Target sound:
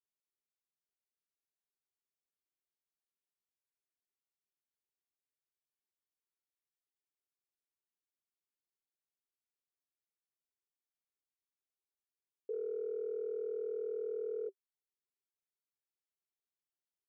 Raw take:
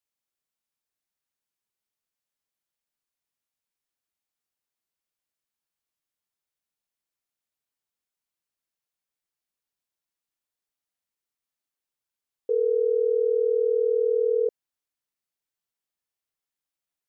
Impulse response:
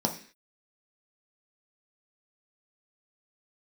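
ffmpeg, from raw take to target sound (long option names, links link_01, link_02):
-af "agate=range=-32dB:threshold=-18dB:ratio=16:detection=peak,equalizer=frequency=390:width_type=o:width=0.34:gain=13,alimiter=level_in=26dB:limit=-24dB:level=0:latency=1:release=50,volume=-26dB,volume=17.5dB"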